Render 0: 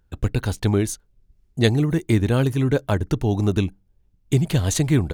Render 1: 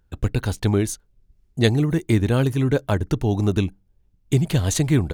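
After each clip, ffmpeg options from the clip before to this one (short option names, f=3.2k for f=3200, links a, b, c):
-af anull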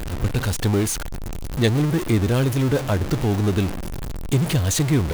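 -af "aeval=exprs='val(0)+0.5*0.112*sgn(val(0))':c=same,volume=-3dB"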